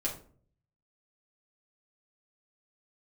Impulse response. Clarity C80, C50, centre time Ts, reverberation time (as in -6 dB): 14.0 dB, 8.5 dB, 20 ms, 0.50 s